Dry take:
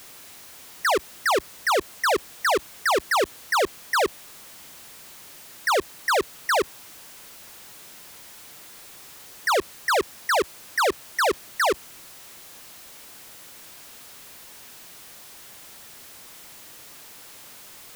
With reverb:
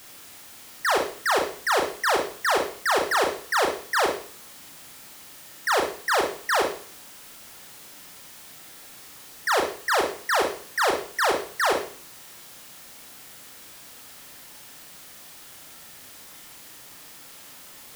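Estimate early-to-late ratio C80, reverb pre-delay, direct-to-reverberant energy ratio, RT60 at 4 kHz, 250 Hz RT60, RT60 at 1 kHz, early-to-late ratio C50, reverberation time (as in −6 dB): 11.0 dB, 31 ms, 1.5 dB, 0.45 s, 0.50 s, 0.50 s, 5.5 dB, 0.45 s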